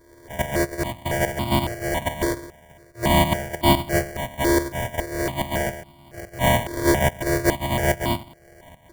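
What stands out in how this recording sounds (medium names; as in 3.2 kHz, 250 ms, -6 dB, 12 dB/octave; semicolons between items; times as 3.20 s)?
a buzz of ramps at a fixed pitch in blocks of 128 samples; tremolo saw up 2.4 Hz, depth 75%; aliases and images of a low sample rate 1.3 kHz, jitter 0%; notches that jump at a steady rate 3.6 Hz 770–1700 Hz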